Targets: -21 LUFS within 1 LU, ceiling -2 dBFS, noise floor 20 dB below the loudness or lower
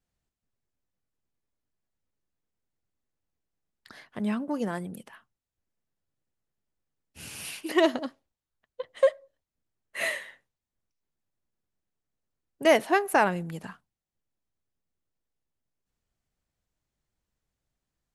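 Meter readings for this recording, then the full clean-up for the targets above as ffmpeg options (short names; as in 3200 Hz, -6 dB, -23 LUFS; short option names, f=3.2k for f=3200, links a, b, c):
loudness -27.0 LUFS; peak -9.5 dBFS; loudness target -21.0 LUFS
-> -af "volume=6dB"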